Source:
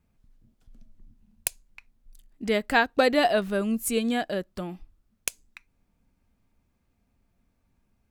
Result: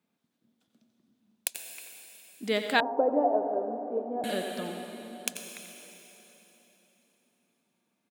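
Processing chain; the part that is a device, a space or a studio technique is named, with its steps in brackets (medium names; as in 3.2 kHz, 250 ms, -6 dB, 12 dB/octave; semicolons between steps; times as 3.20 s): PA in a hall (high-pass 190 Hz 24 dB/octave; peaking EQ 3.6 kHz +6.5 dB 0.43 oct; delay 89 ms -11 dB; reverberation RT60 3.8 s, pre-delay 77 ms, DRR 4.5 dB); 2.80–4.24 s: Chebyshev band-pass 280–910 Hz, order 3; trim -3.5 dB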